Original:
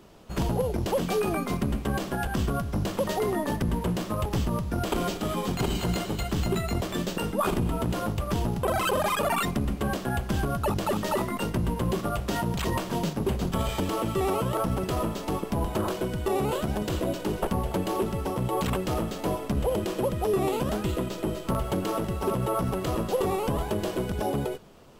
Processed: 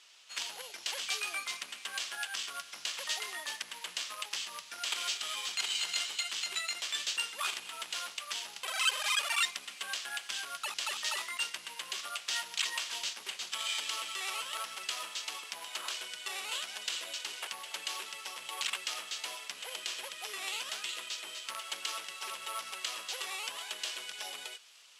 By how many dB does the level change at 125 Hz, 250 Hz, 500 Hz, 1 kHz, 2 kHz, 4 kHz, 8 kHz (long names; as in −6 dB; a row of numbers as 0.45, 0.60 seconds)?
below −40 dB, −36.5 dB, −25.0 dB, −12.0 dB, +0.5 dB, +5.0 dB, +3.0 dB